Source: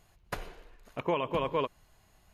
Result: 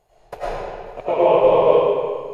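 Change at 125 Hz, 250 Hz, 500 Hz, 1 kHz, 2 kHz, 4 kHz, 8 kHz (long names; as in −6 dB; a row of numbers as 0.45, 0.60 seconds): +6.0 dB, +10.0 dB, +19.0 dB, +14.0 dB, +7.0 dB, +6.5 dB, can't be measured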